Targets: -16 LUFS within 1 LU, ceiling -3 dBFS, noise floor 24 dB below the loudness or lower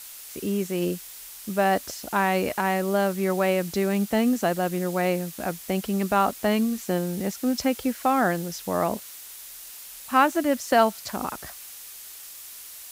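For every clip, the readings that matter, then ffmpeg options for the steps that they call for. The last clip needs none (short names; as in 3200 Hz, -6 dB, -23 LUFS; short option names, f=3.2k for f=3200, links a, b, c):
noise floor -42 dBFS; noise floor target -49 dBFS; loudness -25.0 LUFS; peak -7.5 dBFS; loudness target -16.0 LUFS
-> -af "afftdn=nr=7:nf=-42"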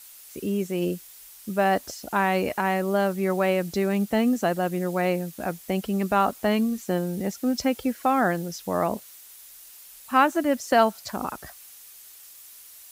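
noise floor -47 dBFS; noise floor target -49 dBFS
-> -af "afftdn=nr=6:nf=-47"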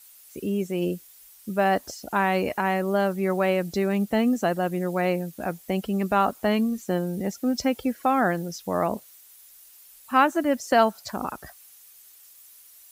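noise floor -52 dBFS; loudness -25.0 LUFS; peak -7.5 dBFS; loudness target -16.0 LUFS
-> -af "volume=9dB,alimiter=limit=-3dB:level=0:latency=1"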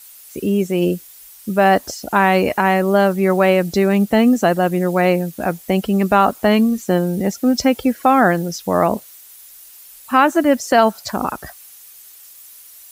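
loudness -16.5 LUFS; peak -3.0 dBFS; noise floor -43 dBFS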